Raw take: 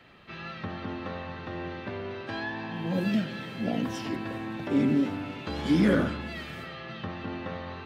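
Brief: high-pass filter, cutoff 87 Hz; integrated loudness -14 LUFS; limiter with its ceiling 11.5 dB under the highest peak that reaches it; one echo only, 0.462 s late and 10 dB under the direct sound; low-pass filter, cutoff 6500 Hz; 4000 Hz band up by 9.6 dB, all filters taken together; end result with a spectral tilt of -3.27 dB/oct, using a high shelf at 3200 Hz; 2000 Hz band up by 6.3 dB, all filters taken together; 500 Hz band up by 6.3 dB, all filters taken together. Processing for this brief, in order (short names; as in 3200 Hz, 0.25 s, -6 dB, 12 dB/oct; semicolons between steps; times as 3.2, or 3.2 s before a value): HPF 87 Hz; LPF 6500 Hz; bell 500 Hz +7.5 dB; bell 2000 Hz +3.5 dB; high shelf 3200 Hz +8.5 dB; bell 4000 Hz +5.5 dB; limiter -19 dBFS; echo 0.462 s -10 dB; gain +16 dB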